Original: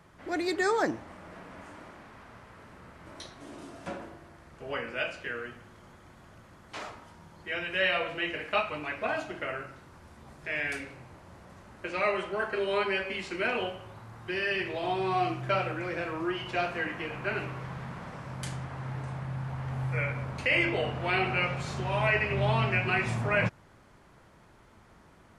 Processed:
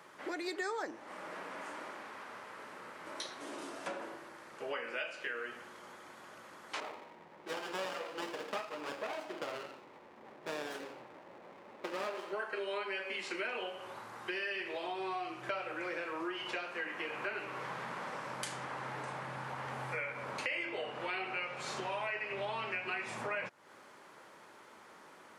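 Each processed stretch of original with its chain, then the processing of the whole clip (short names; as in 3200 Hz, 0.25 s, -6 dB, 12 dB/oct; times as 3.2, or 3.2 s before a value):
6.8–12.33 low shelf 140 Hz -6 dB + low-pass opened by the level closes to 1100 Hz, open at -27.5 dBFS + running maximum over 17 samples
whole clip: HPF 390 Hz 12 dB/oct; compressor 5:1, threshold -41 dBFS; notch 690 Hz, Q 12; gain +4.5 dB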